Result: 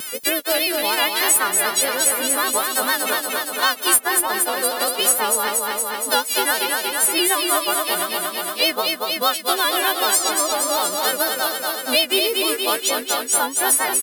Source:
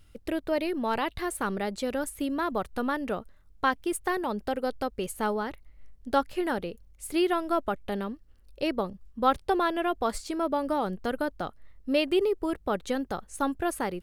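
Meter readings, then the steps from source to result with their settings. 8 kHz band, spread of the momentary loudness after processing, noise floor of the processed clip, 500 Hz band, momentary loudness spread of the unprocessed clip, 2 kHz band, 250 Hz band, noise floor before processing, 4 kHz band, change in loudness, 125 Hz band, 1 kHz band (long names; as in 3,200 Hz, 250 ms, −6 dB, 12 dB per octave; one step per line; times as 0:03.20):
+26.0 dB, 5 LU, −32 dBFS, +5.0 dB, 8 LU, +13.5 dB, −1.0 dB, −56 dBFS, +20.5 dB, +11.5 dB, can't be measured, +8.0 dB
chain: every partial snapped to a pitch grid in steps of 3 semitones
high-pass filter 320 Hz 12 dB per octave
spectral tilt +2.5 dB per octave
pitch vibrato 6.6 Hz 97 cents
shaped tremolo triangle 0.83 Hz, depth 35%
floating-point word with a short mantissa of 2 bits
repeating echo 234 ms, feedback 59%, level −5 dB
multiband upward and downward compressor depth 70%
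level +7 dB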